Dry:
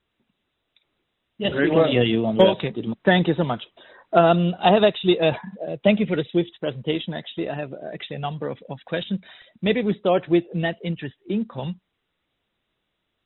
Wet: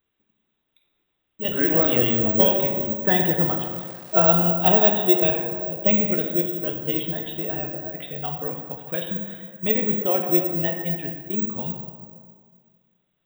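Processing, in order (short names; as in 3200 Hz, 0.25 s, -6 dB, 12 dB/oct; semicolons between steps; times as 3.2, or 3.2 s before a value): 6.69–7.72 G.711 law mismatch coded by mu; plate-style reverb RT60 1.9 s, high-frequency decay 0.45×, DRR 2 dB; careless resampling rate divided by 2×, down filtered, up zero stuff; 3.6–4.5 crackle 350/s -27 dBFS; gain -5.5 dB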